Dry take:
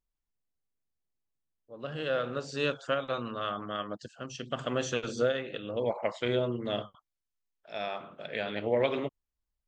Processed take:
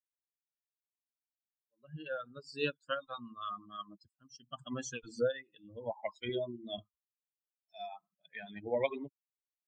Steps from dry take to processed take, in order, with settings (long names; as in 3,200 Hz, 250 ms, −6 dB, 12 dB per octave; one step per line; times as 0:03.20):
spectral dynamics exaggerated over time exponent 3
0:06.29–0:06.78: parametric band 90 Hz −13 dB 1.9 octaves